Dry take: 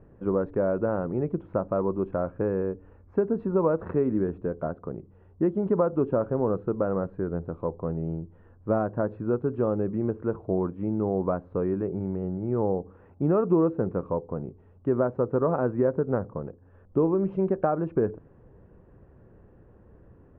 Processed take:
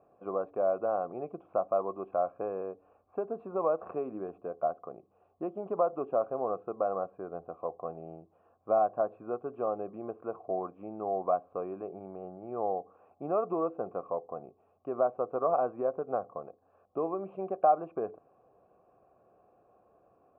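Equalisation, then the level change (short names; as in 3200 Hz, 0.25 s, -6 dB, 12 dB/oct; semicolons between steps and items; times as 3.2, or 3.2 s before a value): vowel filter a; +7.5 dB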